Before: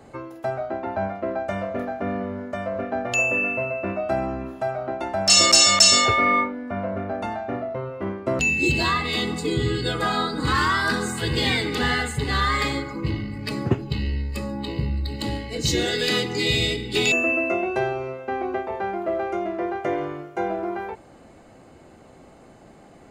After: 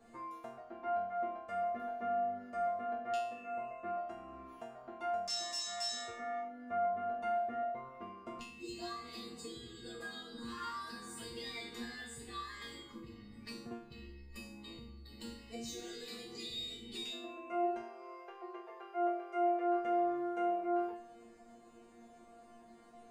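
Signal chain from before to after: 17.83–19.76 s: Chebyshev high-pass 350 Hz, order 8; compression 6:1, threshold -30 dBFS, peak gain reduction 18 dB; chord resonator A#3 fifth, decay 0.53 s; trim +9 dB

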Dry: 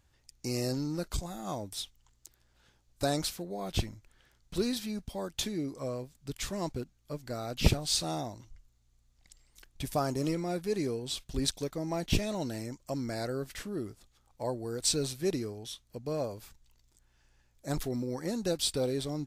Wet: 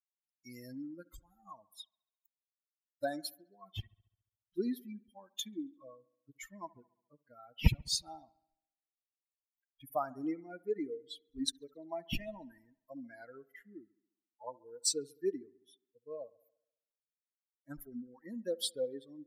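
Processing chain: expander on every frequency bin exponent 3; feedback echo behind a low-pass 69 ms, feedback 56%, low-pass 1.7 kHz, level -21.5 dB; trim +1 dB

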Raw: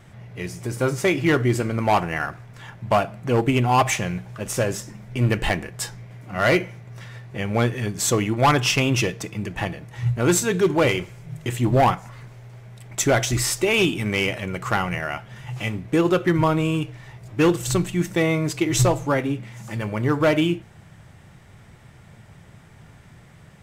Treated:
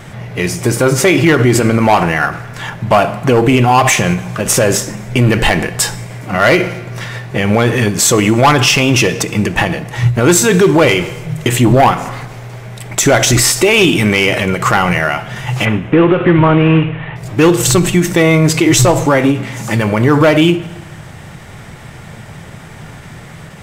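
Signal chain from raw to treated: 15.65–17.16 s: CVSD coder 16 kbps; in parallel at -9 dB: saturation -20 dBFS, distortion -10 dB; on the sum: peaking EQ 67 Hz -5 dB 2.6 oct; on a send at -16 dB: reverberation RT60 1.1 s, pre-delay 3 ms; on the sum: loudness maximiser +16 dB; endings held to a fixed fall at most 140 dB/s; trim -1 dB

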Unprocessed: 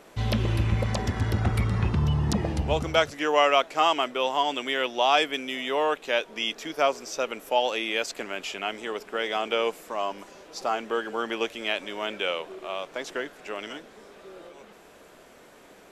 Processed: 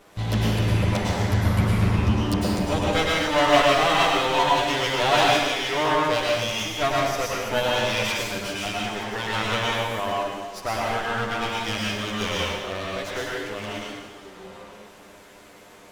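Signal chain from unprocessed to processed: comb filter that takes the minimum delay 10 ms; plate-style reverb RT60 1.3 s, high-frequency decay 1×, pre-delay 90 ms, DRR -4 dB

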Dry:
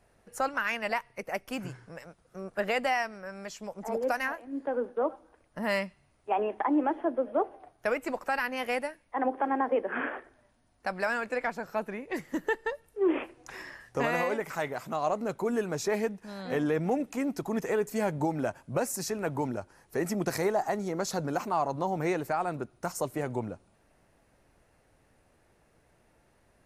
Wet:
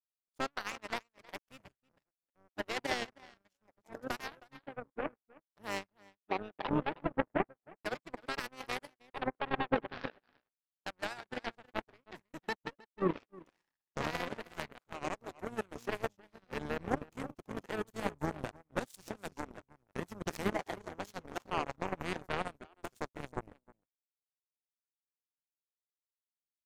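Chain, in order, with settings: echo from a far wall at 54 m, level -7 dB; power-law waveshaper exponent 3; harmony voices -12 st -6 dB, -5 st -16 dB; trim +3 dB

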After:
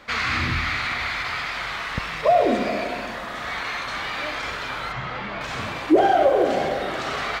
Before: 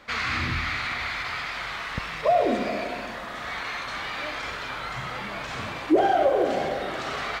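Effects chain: 4.92–5.41 s: distance through air 140 m; trim +3.5 dB

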